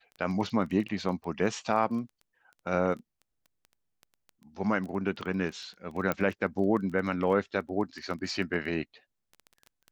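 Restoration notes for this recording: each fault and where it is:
crackle 12/s -36 dBFS
6.12 pop -14 dBFS

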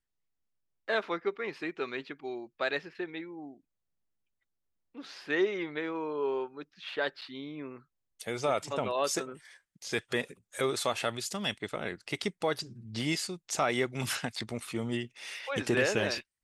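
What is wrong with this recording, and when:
7.21–7.22 gap 7.6 ms

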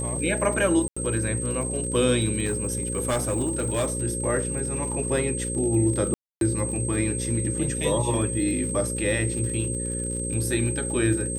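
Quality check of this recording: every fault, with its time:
buzz 60 Hz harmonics 9 -31 dBFS
crackle 68/s -33 dBFS
tone 8300 Hz -30 dBFS
0.88–0.96 gap 85 ms
2.44–3.92 clipped -20 dBFS
6.14–6.41 gap 0.272 s

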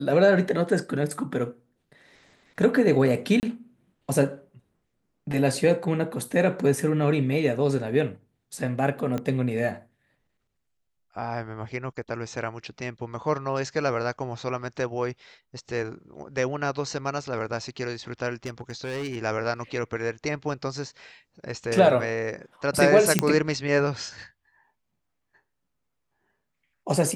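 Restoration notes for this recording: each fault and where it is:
3.4–3.43 gap 29 ms
9.18 pop -17 dBFS
18.45–19.16 clipped -27.5 dBFS
23.19 pop -4 dBFS

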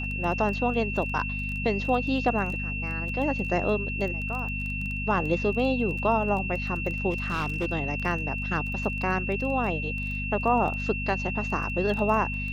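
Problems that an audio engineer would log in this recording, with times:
crackle 13/s -32 dBFS
hum 50 Hz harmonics 5 -33 dBFS
tone 2700 Hz -32 dBFS
7.1–7.66 clipped -23 dBFS

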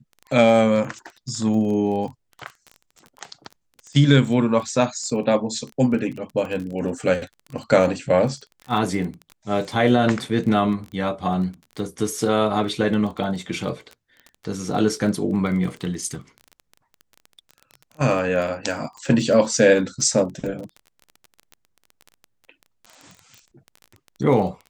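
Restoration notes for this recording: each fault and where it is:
crackle 21/s -30 dBFS

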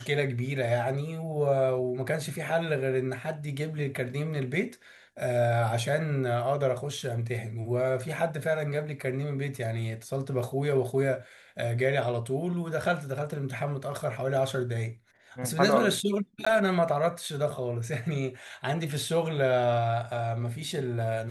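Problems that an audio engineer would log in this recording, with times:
16.45–16.46 gap 15 ms

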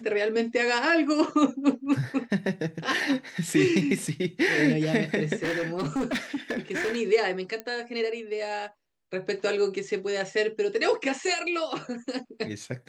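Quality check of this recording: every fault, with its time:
5.42–6.97 clipped -24 dBFS
7.6 pop -19 dBFS

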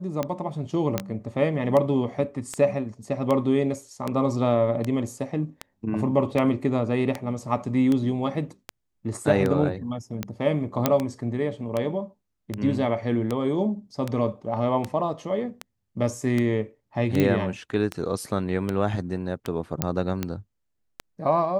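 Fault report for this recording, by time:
tick 78 rpm -13 dBFS
0.98 pop -9 dBFS
10.86 pop -4 dBFS
17.2 pop -10 dBFS
19.82 pop -6 dBFS

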